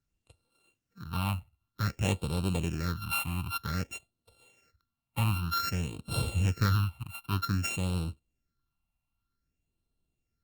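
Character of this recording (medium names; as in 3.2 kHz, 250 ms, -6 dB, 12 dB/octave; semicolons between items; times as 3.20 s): a buzz of ramps at a fixed pitch in blocks of 32 samples; phasing stages 6, 0.53 Hz, lowest notch 410–1800 Hz; Opus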